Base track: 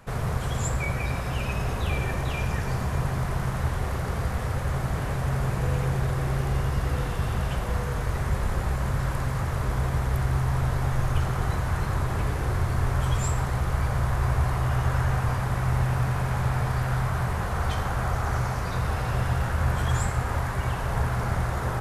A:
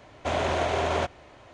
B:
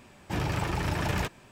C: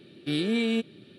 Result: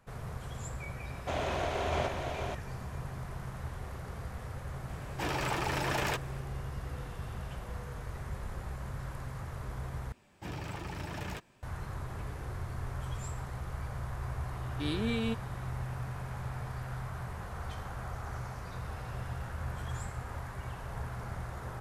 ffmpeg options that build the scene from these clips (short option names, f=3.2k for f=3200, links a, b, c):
-filter_complex "[2:a]asplit=2[a][b];[0:a]volume=-13.5dB[c];[1:a]aecho=1:1:632:0.596[d];[a]highpass=320[e];[c]asplit=2[f][g];[f]atrim=end=10.124[h];[b]atrim=end=1.51,asetpts=PTS-STARTPTS,volume=-10.5dB[i];[g]atrim=start=11.626[j];[d]atrim=end=1.53,asetpts=PTS-STARTPTS,volume=-7.5dB,afade=t=in:d=0.004:c=hsin,afade=t=out:st=1.526:d=0.004:c=hsin,adelay=1020[k];[e]atrim=end=1.51,asetpts=PTS-STARTPTS,afade=t=in:d=0.004:c=hsin,afade=t=out:st=1.506:d=0.004:c=hsin,adelay=215649S[l];[3:a]atrim=end=1.18,asetpts=PTS-STARTPTS,volume=-7dB,afade=t=in:d=0.004:c=hsin,afade=t=out:st=1.176:d=0.004:c=hsin,adelay=14530[m];[h][i]acrossfade=d=0.004:c1=hsin:c2=hsin[n];[n][j]acrossfade=d=0.004:c1=hsin:c2=hsin[o];[o][k][l][m]amix=inputs=4:normalize=0"